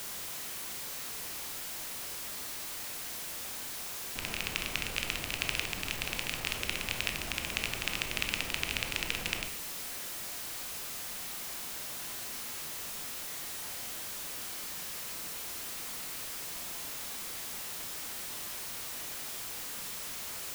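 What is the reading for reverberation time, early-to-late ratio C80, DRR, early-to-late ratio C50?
0.60 s, 13.5 dB, 5.5 dB, 9.5 dB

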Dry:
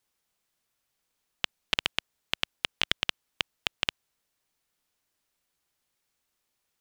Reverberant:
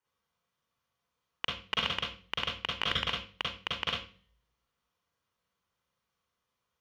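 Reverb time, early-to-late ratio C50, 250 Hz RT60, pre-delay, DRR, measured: 0.40 s, 3.5 dB, 0.60 s, 39 ms, -2.0 dB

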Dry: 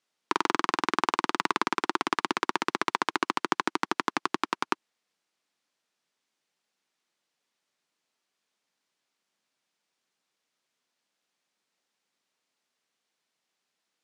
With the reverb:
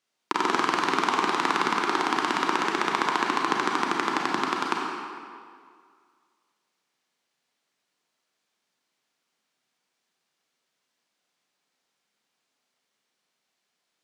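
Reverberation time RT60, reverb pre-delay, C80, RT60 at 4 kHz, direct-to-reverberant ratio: 2.1 s, 31 ms, 1.5 dB, 1.5 s, -1.5 dB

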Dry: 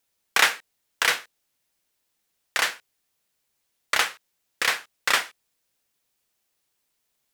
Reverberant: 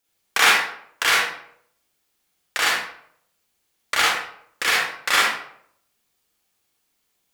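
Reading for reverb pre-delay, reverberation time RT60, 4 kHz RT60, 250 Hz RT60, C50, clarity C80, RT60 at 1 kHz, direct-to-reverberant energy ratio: 38 ms, 0.70 s, 0.45 s, 0.65 s, -1.5 dB, 3.5 dB, 0.65 s, -5.5 dB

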